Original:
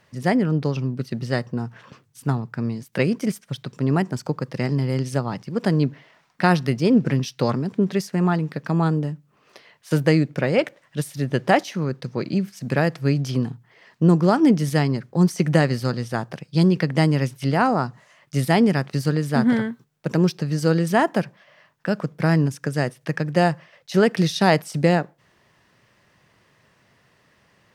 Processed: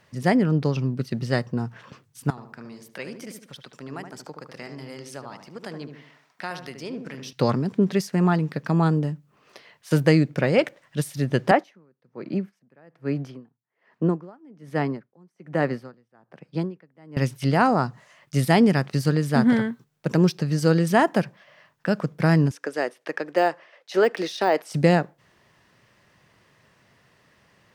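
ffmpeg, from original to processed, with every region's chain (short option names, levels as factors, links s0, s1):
-filter_complex "[0:a]asettb=1/sr,asplit=3[s0][s1][s2];[s0]atrim=end=2.304[s3];[s1]atrim=start=2.3:end=7.33,asetpts=PTS-STARTPTS,afade=t=in:d=0.004:c=qsin,afade=t=out:st=5.026:d=0.004:c=qsin,highpass=f=740:p=1,acompressor=threshold=0.00501:ratio=1.5:attack=3.2:release=140:knee=1:detection=peak,asplit=2[s4][s5];[s5]adelay=74,lowpass=f=1400:p=1,volume=0.501,asplit=2[s6][s7];[s7]adelay=74,lowpass=f=1400:p=1,volume=0.46,asplit=2[s8][s9];[s9]adelay=74,lowpass=f=1400:p=1,volume=0.46,asplit=2[s10][s11];[s11]adelay=74,lowpass=f=1400:p=1,volume=0.46,asplit=2[s12][s13];[s13]adelay=74,lowpass=f=1400:p=1,volume=0.46,asplit=2[s14][s15];[s15]adelay=74,lowpass=f=1400:p=1,volume=0.46[s16];[s4][s6][s8][s10][s12][s14][s16]amix=inputs=7:normalize=0,atrim=end_sample=221823[s17];[s2]atrim=start=7.326[s18];[s3][s17]acrossfade=d=0.004:c1=hsin:c2=qsin[s19];[s19][s18]acrossfade=d=0.004:c1=qsin:c2=hsin,asettb=1/sr,asplit=3[s20][s21][s22];[s20]atrim=end=11.514[s23];[s21]atrim=start=11.51:end=17.17,asetpts=PTS-STARTPTS,afade=t=in:d=0.004:c=qsin,afade=t=out:st=5.656:d=0.004:c=qsin,acrossover=split=190 2300:gain=0.224 1 0.178[s24][s25][s26];[s24][s25][s26]amix=inputs=3:normalize=0,aeval=exprs='val(0)*pow(10,-33*(0.5-0.5*cos(2*PI*1.2*n/s))/20)':c=same[s27];[s22]atrim=start=17.166[s28];[s23][s27]acrossfade=d=0.004:c1=hsin:c2=qsin[s29];[s29][s28]acrossfade=d=0.004:c1=qsin:c2=hsin,asettb=1/sr,asplit=3[s30][s31][s32];[s30]atrim=end=22.514[s33];[s31]atrim=start=22.51:end=24.71,asetpts=PTS-STARTPTS,afade=t=in:d=0.004:c=qsin,afade=t=out:st=2.196:d=0.004:c=qsin,highpass=f=320:w=0.5412,highpass=f=320:w=1.3066,aemphasis=mode=reproduction:type=cd,deesser=0.8[s34];[s32]atrim=start=24.706[s35];[s33][s34]acrossfade=d=0.004:c1=hsin:c2=qsin[s36];[s36][s35]acrossfade=d=0.004:c1=qsin:c2=hsin"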